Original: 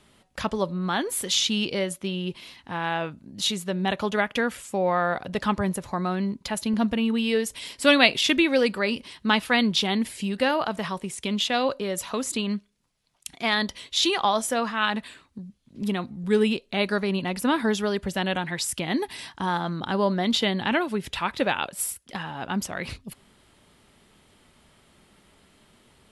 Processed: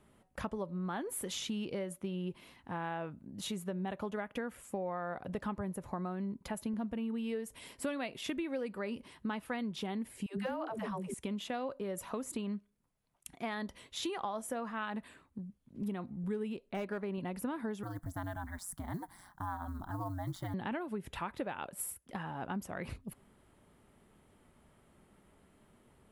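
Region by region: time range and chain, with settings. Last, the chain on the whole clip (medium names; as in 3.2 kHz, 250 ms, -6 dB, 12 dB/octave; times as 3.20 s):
10.26–11.14 s: phase dispersion lows, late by 125 ms, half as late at 340 Hz + hard clipper -15.5 dBFS
16.69–17.18 s: tone controls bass -4 dB, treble -8 dB + hard clipper -19.5 dBFS
17.83–20.54 s: ring modulator 92 Hz + companded quantiser 6-bit + static phaser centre 1.1 kHz, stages 4
whole clip: peaking EQ 4.4 kHz -14 dB 2 oct; compression 6:1, threshold -30 dBFS; trim -4.5 dB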